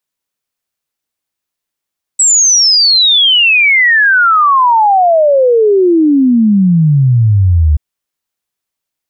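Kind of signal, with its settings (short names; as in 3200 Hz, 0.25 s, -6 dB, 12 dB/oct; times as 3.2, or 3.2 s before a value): log sweep 7900 Hz -> 72 Hz 5.58 s -5 dBFS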